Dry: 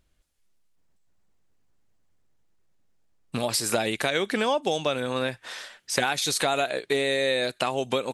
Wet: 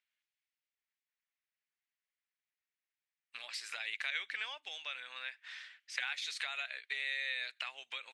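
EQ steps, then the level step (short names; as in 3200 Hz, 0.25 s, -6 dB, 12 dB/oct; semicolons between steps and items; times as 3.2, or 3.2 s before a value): ladder band-pass 2500 Hz, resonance 40%; +1.0 dB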